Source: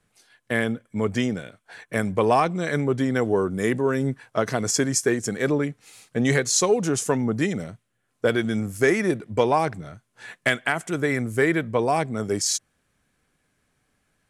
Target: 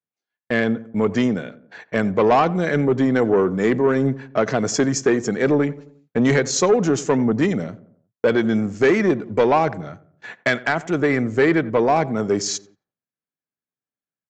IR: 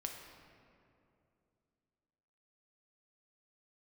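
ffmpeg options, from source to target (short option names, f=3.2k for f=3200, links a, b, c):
-filter_complex "[0:a]highpass=140,agate=range=-33dB:threshold=-43dB:ratio=16:detection=peak,highshelf=f=2.8k:g=-9,aresample=16000,asoftclip=type=tanh:threshold=-16dB,aresample=44100,asplit=2[a][b];[b]adelay=89,lowpass=f=1.2k:p=1,volume=-17dB,asplit=2[c][d];[d]adelay=89,lowpass=f=1.2k:p=1,volume=0.51,asplit=2[e][f];[f]adelay=89,lowpass=f=1.2k:p=1,volume=0.51,asplit=2[g][h];[h]adelay=89,lowpass=f=1.2k:p=1,volume=0.51[i];[a][c][e][g][i]amix=inputs=5:normalize=0,volume=7dB"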